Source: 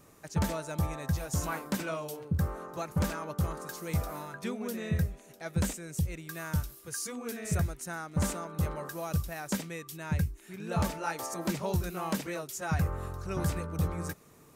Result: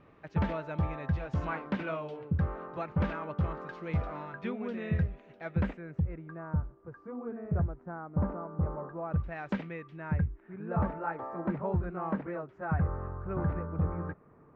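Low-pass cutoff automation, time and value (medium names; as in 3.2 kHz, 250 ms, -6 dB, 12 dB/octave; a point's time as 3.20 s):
low-pass 24 dB/octave
5.43 s 2.9 kHz
6.46 s 1.2 kHz
8.95 s 1.2 kHz
9.42 s 2.9 kHz
10.41 s 1.6 kHz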